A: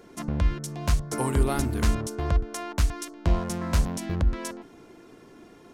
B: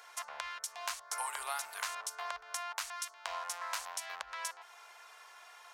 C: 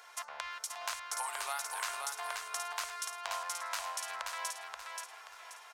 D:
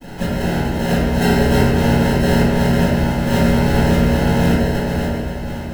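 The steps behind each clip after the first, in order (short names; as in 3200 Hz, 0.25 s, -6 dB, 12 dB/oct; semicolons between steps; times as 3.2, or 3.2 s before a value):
inverse Chebyshev high-pass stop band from 320 Hz, stop band 50 dB; compressor 2:1, threshold -45 dBFS, peak gain reduction 9 dB; gain +4 dB
feedback echo 0.53 s, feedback 35%, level -4 dB
chord vocoder major triad, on B2; sample-and-hold 38×; reverb RT60 1.4 s, pre-delay 3 ms, DRR -16.5 dB; gain +6 dB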